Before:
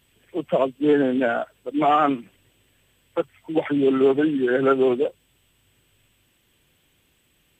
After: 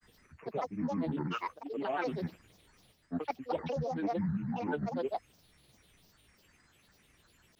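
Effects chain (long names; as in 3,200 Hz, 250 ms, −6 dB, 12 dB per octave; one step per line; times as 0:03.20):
reversed playback
downward compressor 4 to 1, threshold −33 dBFS, peak gain reduction 16.5 dB
reversed playback
granular cloud, pitch spread up and down by 12 semitones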